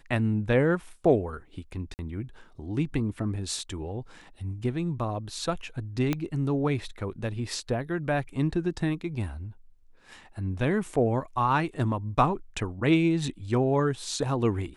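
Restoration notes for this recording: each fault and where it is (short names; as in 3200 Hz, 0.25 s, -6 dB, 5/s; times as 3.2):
1.94–1.99 gap 49 ms
6.13 pop -13 dBFS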